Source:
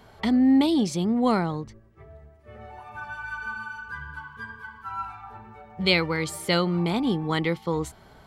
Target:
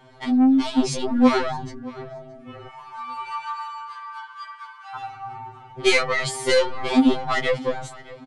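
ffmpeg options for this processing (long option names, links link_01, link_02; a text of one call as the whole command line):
ffmpeg -i in.wav -filter_complex "[0:a]volume=20dB,asoftclip=hard,volume=-20dB,highshelf=frequency=7100:gain=-7,asoftclip=type=tanh:threshold=-23dB,aresample=22050,aresample=44100,dynaudnorm=framelen=130:gausssize=11:maxgain=9dB,asettb=1/sr,asplit=3[link_01][link_02][link_03];[link_01]atrim=end=2.674[link_04];[link_02]atrim=start=2.67:end=4.96,asetpts=PTS-STARTPTS,afade=type=in:duration=0.004:curve=qsin,afade=type=out:start_time=2.286:duration=0.004:curve=qsin,highpass=frequency=890:width=0.5412,highpass=frequency=890:width=1.3066[link_05];[link_03]atrim=start=4.956[link_06];[link_04][link_05]acrossfade=duration=0.004:curve1=hsin:curve2=qsin[link_07];[link_07][link_06]acrossfade=duration=0.004:curve1=qsin:curve2=hsin,asplit=2[link_08][link_09];[link_09]adelay=619,lowpass=frequency=4000:poles=1,volume=-19.5dB,asplit=2[link_10][link_11];[link_11]adelay=619,lowpass=frequency=4000:poles=1,volume=0.35,asplit=2[link_12][link_13];[link_13]adelay=619,lowpass=frequency=4000:poles=1,volume=0.35[link_14];[link_08][link_10][link_12][link_14]amix=inputs=4:normalize=0,afftfilt=real='re*2.45*eq(mod(b,6),0)':imag='im*2.45*eq(mod(b,6),0)':win_size=2048:overlap=0.75,volume=3.5dB" out.wav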